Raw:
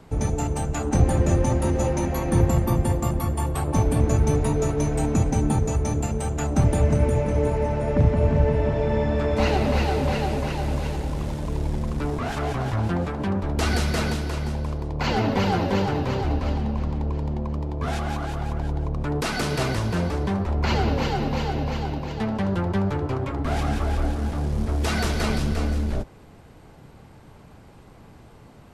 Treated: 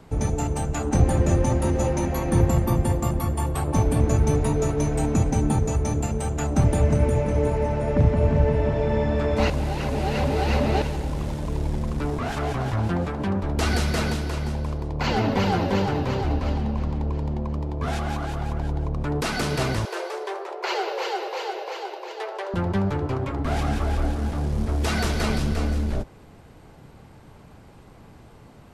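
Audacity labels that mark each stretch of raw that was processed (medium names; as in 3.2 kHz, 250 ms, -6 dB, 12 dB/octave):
9.500000	10.820000	reverse
19.850000	22.540000	brick-wall FIR high-pass 340 Hz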